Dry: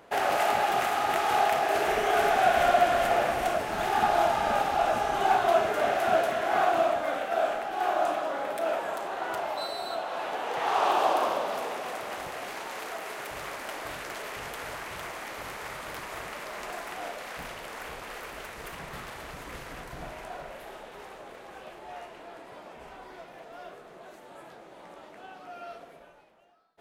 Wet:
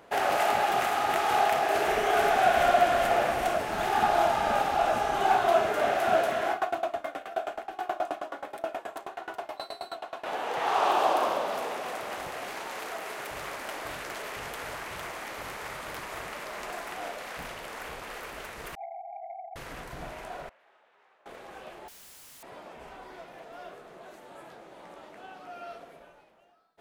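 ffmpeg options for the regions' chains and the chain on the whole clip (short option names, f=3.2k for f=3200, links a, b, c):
-filter_complex "[0:a]asettb=1/sr,asplit=3[a][b][c];[a]atrim=end=6.514[d];[b]atrim=start=6.51:end=10.26,asetpts=PTS-STARTPTS,afade=t=in:d=0.004:c=qsin,afade=t=out:st=3.746:d=0.004:c=qsin,aecho=1:1:2.8:0.32,atrim=end_sample=165375,aeval=exprs='val(0)*pow(10,-23*if(lt(mod(9.4*n/s,1),2*abs(9.4)/1000),1-mod(9.4*n/s,1)/(2*abs(9.4)/1000),(mod(9.4*n/s,1)-2*abs(9.4)/1000)/(1-2*abs(9.4)/1000))/20)':c=same[e];[c]atrim=start=10.256[f];[d][e]acrossfade=d=0.004:c1=hsin:c2=qsin[g];[g][f]acrossfade=d=0.004:c1=qsin:c2=hsin,asettb=1/sr,asplit=3[h][i][j];[h]atrim=end=18.754[k];[i]atrim=start=18.75:end=19.56,asetpts=PTS-STARTPTS,afade=t=in:d=0.004:c=qsin,afade=t=out:st=0.806:d=0.004:c=qsin,asuperpass=centerf=730:order=20:qfactor=4.5,aeval=exprs='0.0211*sin(PI/2*2.51*val(0)/0.0211)':c=same[l];[j]atrim=start=19.556[m];[k][l]acrossfade=d=0.004:c1=hsin:c2=qsin[n];[n][m]acrossfade=d=0.004:c1=qsin:c2=hsin,asettb=1/sr,asplit=3[o][p][q];[o]atrim=end=20.494[r];[p]atrim=start=20.49:end=21.26,asetpts=PTS-STARTPTS,afade=t=in:d=0.004:c=qsin,afade=t=out:st=0.766:d=0.004:c=qsin,lowpass=1.6k,aderivative[s];[q]atrim=start=21.256[t];[r][s]acrossfade=d=0.004:c1=hsin:c2=qsin[u];[u][t]acrossfade=d=0.004:c1=qsin:c2=hsin,asettb=1/sr,asplit=3[v][w][x];[v]atrim=end=21.884[y];[w]atrim=start=21.88:end=22.43,asetpts=PTS-STARTPTS,afade=t=in:d=0.004:c=qsin,afade=t=out:st=0.546:d=0.004:c=qsin,aeval=exprs='val(0)+0.00251*sin(2*PI*8800*n/s)':c=same,aeval=exprs='(mod(200*val(0)+1,2)-1)/200':c=same[z];[x]atrim=start=22.426[aa];[y][z]acrossfade=d=0.004:c1=hsin:c2=qsin[ab];[ab][aa]acrossfade=d=0.004:c1=qsin:c2=hsin"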